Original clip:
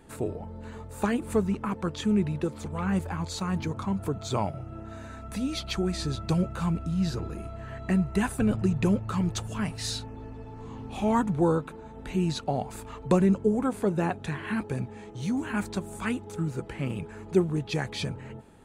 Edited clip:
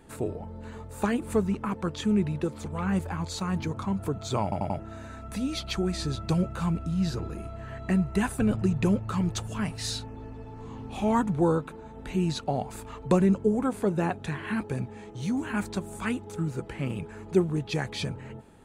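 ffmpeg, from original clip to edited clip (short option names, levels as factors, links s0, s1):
-filter_complex "[0:a]asplit=5[s0][s1][s2][s3][s4];[s0]atrim=end=4.522[s5];[s1]atrim=start=4.428:end=4.522[s6];[s2]atrim=start=4.428:end=4.522[s7];[s3]atrim=start=4.428:end=4.522[s8];[s4]atrim=start=4.788[s9];[s5][s6]acrossfade=d=0.004:c1=hsin:c2=hsin[s10];[s10][s7]acrossfade=d=0.004:c1=hsin:c2=hsin[s11];[s11][s8]acrossfade=d=0.004:c1=hsin:c2=hsin[s12];[s12][s9]acrossfade=d=0.004:c1=hsin:c2=hsin"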